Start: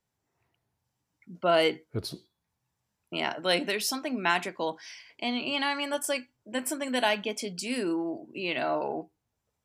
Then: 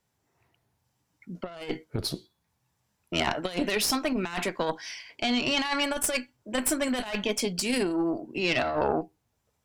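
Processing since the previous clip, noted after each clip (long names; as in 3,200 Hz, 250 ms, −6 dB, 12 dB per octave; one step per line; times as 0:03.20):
harmonic generator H 4 −14 dB, 8 −35 dB, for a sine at −10.5 dBFS
compressor whose output falls as the input rises −30 dBFS, ratio −0.5
level +3.5 dB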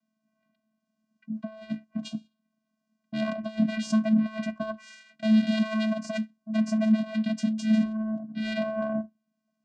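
channel vocoder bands 8, square 218 Hz
level +3 dB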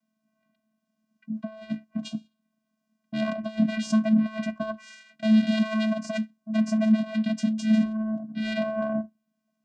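notch filter 4,400 Hz, Q 19
level +1.5 dB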